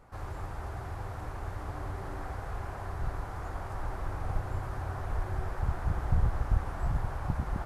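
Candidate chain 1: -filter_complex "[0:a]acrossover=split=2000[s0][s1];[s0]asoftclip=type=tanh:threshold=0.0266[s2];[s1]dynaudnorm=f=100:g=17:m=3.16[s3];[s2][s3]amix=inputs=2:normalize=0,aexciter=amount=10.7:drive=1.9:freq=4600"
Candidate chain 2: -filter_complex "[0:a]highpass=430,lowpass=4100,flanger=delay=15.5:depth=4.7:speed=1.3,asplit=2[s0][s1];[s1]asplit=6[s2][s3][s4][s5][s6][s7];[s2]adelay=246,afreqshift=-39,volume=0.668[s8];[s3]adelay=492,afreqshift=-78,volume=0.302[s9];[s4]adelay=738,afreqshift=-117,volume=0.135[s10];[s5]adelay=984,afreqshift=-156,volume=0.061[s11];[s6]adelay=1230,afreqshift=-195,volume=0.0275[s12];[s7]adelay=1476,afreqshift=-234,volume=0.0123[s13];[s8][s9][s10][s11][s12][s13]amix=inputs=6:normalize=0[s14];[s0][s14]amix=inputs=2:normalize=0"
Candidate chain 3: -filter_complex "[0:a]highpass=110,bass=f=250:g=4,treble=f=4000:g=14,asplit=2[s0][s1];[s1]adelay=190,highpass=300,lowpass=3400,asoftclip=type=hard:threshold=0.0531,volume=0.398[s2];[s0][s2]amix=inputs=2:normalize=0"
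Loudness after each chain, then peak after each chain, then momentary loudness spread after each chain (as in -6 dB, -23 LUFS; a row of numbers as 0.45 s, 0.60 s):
-32.5 LUFS, -45.0 LUFS, -37.0 LUFS; -19.5 dBFS, -31.5 dBFS, -16.5 dBFS; 5 LU, 3 LU, 7 LU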